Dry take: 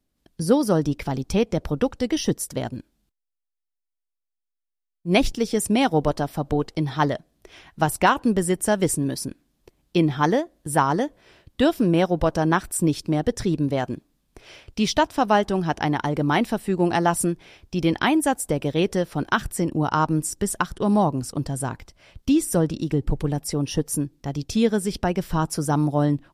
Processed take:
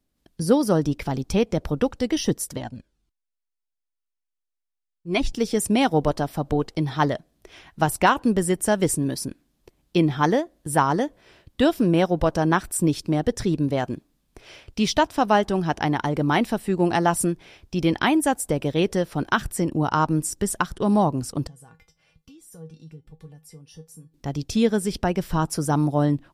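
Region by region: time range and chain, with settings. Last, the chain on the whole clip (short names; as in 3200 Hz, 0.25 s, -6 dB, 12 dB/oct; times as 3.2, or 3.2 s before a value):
2.57–5.33 LPF 8900 Hz + cascading flanger falling 1.9 Hz
21.47–24.14 compressor 3:1, threshold -36 dBFS + resonator 160 Hz, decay 0.17 s, harmonics odd, mix 90%
whole clip: dry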